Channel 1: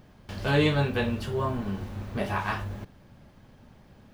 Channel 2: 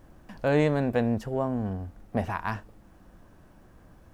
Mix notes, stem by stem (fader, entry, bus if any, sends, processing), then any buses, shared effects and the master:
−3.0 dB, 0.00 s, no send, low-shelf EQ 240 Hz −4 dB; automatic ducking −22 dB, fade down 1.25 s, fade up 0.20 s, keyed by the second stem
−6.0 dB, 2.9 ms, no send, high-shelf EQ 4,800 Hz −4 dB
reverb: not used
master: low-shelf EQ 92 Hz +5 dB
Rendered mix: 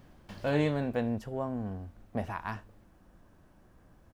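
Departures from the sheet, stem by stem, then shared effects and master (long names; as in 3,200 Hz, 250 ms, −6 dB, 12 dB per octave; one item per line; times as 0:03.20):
stem 2: missing high-shelf EQ 4,800 Hz −4 dB
master: missing low-shelf EQ 92 Hz +5 dB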